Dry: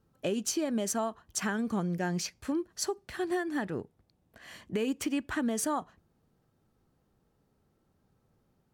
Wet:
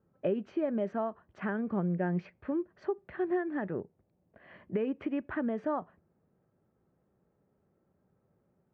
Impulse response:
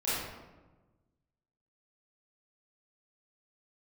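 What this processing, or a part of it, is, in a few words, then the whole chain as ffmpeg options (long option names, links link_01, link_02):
bass cabinet: -filter_complex "[0:a]highpass=63,equalizer=frequency=180:width_type=q:width=4:gain=5,equalizer=frequency=380:width_type=q:width=4:gain=5,equalizer=frequency=580:width_type=q:width=4:gain=7,lowpass=frequency=2200:width=0.5412,lowpass=frequency=2200:width=1.3066,asettb=1/sr,asplit=3[link_01][link_02][link_03];[link_01]atrim=end=3.794[link_04];[link_02]atrim=start=3.79:end=4.5,asetpts=PTS-STARTPTS,afade=type=in:duration=0.004:curve=qsin,afade=type=out:start_time=0.706:duration=0.004:curve=qsin,equalizer=frequency=1500:width_type=o:width=1.1:gain=-3.5[link_05];[link_03]atrim=start=4.496[link_06];[link_04][link_05]acrossfade=duration=0.004:curve1=hsin:curve2=qsin[link_07];[link_07][link_06]acrossfade=duration=0.004:curve1=qsin:curve2=hsin,volume=-3.5dB"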